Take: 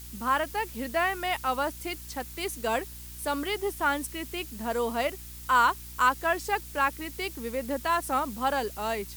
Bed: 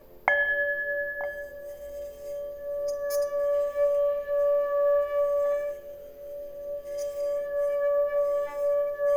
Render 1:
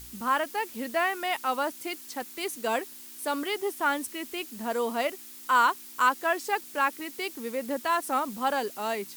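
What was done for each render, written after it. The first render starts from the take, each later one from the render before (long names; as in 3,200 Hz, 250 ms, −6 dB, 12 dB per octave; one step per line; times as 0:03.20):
hum removal 60 Hz, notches 3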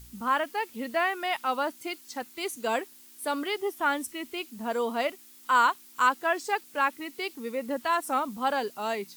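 noise reduction from a noise print 7 dB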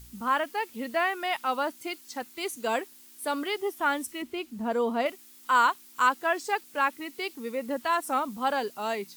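0:04.22–0:05.06: spectral tilt −2 dB per octave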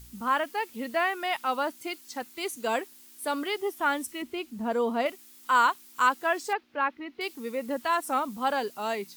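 0:06.53–0:07.21: high-frequency loss of the air 300 metres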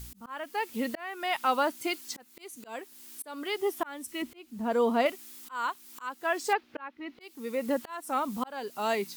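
in parallel at −2 dB: downward compressor, threshold −34 dBFS, peak gain reduction 16 dB
on the sum: volume swells 499 ms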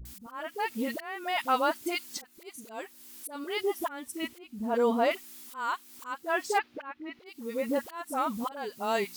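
all-pass dispersion highs, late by 53 ms, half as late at 620 Hz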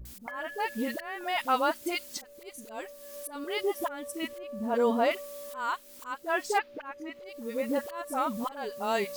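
mix in bed −18.5 dB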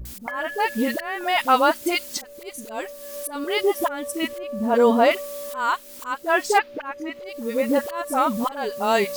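level +9 dB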